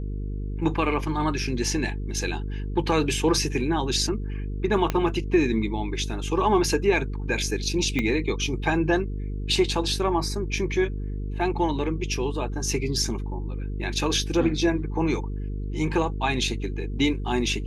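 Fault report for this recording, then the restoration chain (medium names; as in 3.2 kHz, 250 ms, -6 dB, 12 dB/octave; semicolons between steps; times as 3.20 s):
buzz 50 Hz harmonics 9 -30 dBFS
4.90 s: pop -10 dBFS
7.99 s: pop -12 dBFS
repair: de-click; de-hum 50 Hz, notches 9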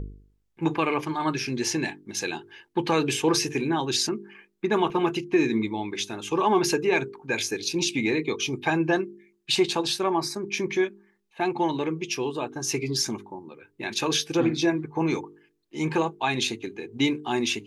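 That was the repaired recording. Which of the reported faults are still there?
4.90 s: pop
7.99 s: pop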